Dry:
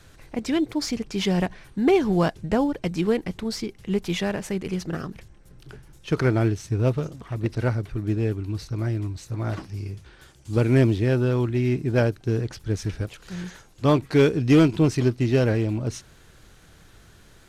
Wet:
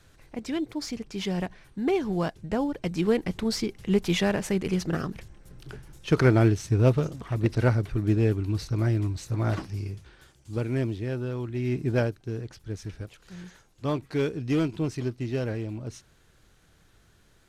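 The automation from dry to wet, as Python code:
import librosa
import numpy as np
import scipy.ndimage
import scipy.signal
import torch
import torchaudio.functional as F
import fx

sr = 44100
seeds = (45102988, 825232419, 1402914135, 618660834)

y = fx.gain(x, sr, db=fx.line((2.43, -6.5), (3.43, 1.5), (9.6, 1.5), (10.72, -9.5), (11.44, -9.5), (11.88, -1.5), (12.22, -9.0)))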